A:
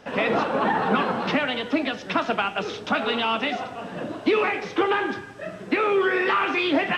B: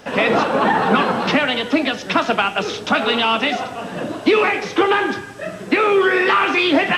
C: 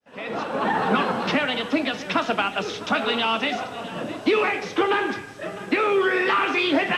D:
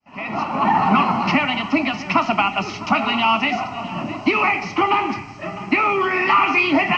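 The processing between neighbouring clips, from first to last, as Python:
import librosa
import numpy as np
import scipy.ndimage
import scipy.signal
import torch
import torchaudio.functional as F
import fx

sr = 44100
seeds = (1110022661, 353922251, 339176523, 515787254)

y1 = fx.high_shelf(x, sr, hz=6500.0, db=10.5)
y1 = F.gain(torch.from_numpy(y1), 6.0).numpy()
y2 = fx.fade_in_head(y1, sr, length_s=0.8)
y2 = y2 + 10.0 ** (-16.5 / 20.0) * np.pad(y2, (int(657 * sr / 1000.0), 0))[:len(y2)]
y2 = F.gain(torch.from_numpy(y2), -5.5).numpy()
y3 = fx.air_absorb(y2, sr, metres=120.0)
y3 = fx.fixed_phaser(y3, sr, hz=2400.0, stages=8)
y3 = F.gain(torch.from_numpy(y3), 9.0).numpy()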